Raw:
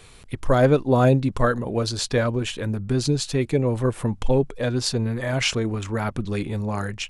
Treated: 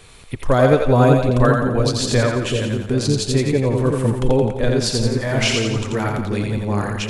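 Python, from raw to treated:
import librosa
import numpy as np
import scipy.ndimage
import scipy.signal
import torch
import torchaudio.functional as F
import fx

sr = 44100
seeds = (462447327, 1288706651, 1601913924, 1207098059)

y = fx.echo_split(x, sr, split_hz=480.0, low_ms=381, high_ms=86, feedback_pct=52, wet_db=-3.0)
y = y * 10.0 ** (2.5 / 20.0)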